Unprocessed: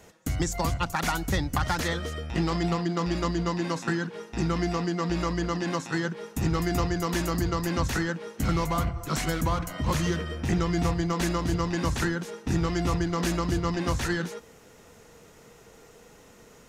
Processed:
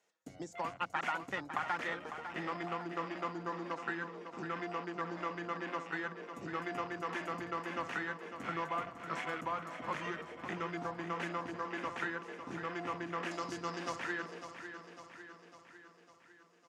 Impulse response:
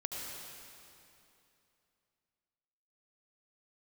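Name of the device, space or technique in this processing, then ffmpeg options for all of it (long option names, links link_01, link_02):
over-cleaned archive recording: -filter_complex "[0:a]highpass=150,lowpass=7900,afwtdn=0.0158,highpass=frequency=860:poles=1,asettb=1/sr,asplit=3[link_01][link_02][link_03];[link_01]atrim=end=13.314[link_04];[link_02]atrim=start=13.31:end=13.96,asetpts=PTS-STARTPTS,afade=type=in:duration=0.004:curve=qsin,afade=type=out:start_time=0.646:duration=0.004:curve=qsin,highshelf=frequency=3500:width_type=q:width=1.5:gain=11.5[link_05];[link_03]atrim=start=13.956[link_06];[link_04][link_05]acrossfade=duration=0.004:curve1=hsin:curve2=qsin[link_07];[link_07][link_06]acrossfade=duration=0.004:curve1=qsin:curve2=hsin,aecho=1:1:552|1104|1656|2208|2760|3312|3864:0.335|0.191|0.109|0.062|0.0354|0.0202|0.0115,volume=-4.5dB"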